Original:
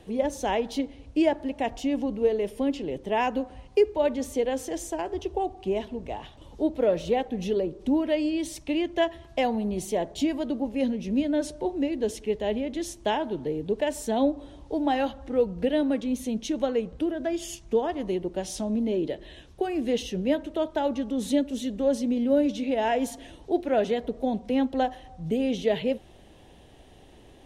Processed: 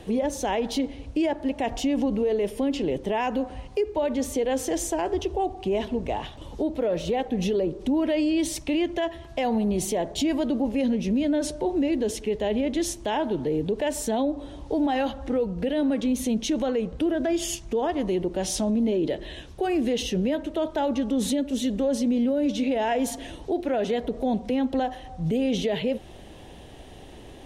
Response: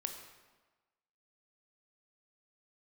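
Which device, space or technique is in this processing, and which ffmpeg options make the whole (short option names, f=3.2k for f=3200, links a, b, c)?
stacked limiters: -af "alimiter=limit=-18dB:level=0:latency=1:release=448,alimiter=level_in=1dB:limit=-24dB:level=0:latency=1:release=41,volume=-1dB,volume=7.5dB"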